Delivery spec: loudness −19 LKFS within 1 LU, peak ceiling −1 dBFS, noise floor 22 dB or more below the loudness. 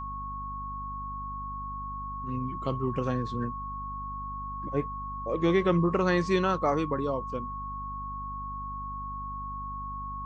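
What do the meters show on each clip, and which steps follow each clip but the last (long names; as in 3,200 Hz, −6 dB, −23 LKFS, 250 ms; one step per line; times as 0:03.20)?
mains hum 50 Hz; hum harmonics up to 250 Hz; level of the hum −39 dBFS; interfering tone 1,100 Hz; level of the tone −35 dBFS; integrated loudness −31.5 LKFS; sample peak −13.0 dBFS; target loudness −19.0 LKFS
→ mains-hum notches 50/100/150/200/250 Hz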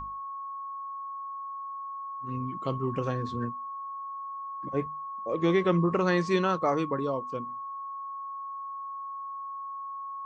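mains hum none found; interfering tone 1,100 Hz; level of the tone −35 dBFS
→ notch filter 1,100 Hz, Q 30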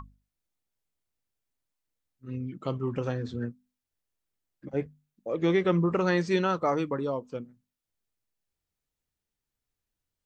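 interfering tone none found; integrated loudness −29.0 LKFS; sample peak −14.0 dBFS; target loudness −19.0 LKFS
→ level +10 dB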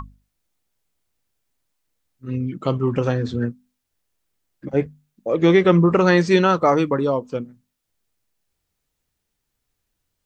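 integrated loudness −19.0 LKFS; sample peak −4.0 dBFS; background noise floor −78 dBFS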